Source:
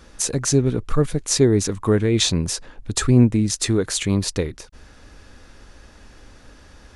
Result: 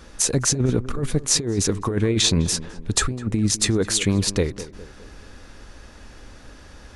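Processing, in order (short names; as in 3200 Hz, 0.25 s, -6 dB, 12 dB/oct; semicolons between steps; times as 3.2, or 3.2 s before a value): negative-ratio compressor -19 dBFS, ratio -0.5; on a send: tape echo 0.207 s, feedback 52%, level -13 dB, low-pass 1200 Hz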